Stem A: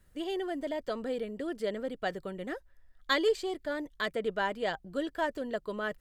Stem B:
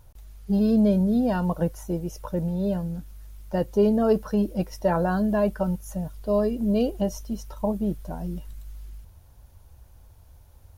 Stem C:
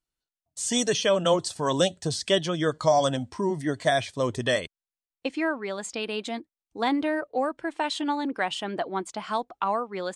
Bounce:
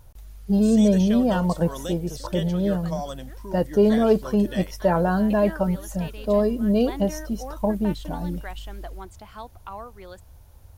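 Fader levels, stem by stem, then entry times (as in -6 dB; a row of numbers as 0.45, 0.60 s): -13.0, +2.5, -11.0 dB; 0.80, 0.00, 0.05 s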